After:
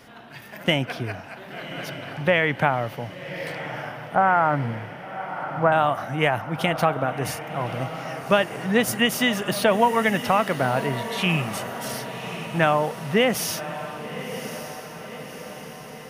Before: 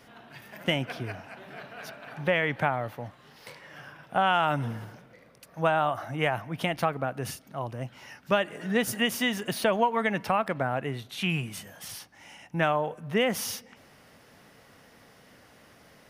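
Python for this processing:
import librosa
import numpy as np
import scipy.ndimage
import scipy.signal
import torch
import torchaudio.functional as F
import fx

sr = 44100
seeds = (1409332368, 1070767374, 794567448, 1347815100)

p1 = fx.ellip_lowpass(x, sr, hz=2100.0, order=4, stop_db=40, at=(4.15, 5.72))
p2 = p1 + fx.echo_diffused(p1, sr, ms=1117, feedback_pct=58, wet_db=-11, dry=0)
y = p2 * 10.0 ** (5.5 / 20.0)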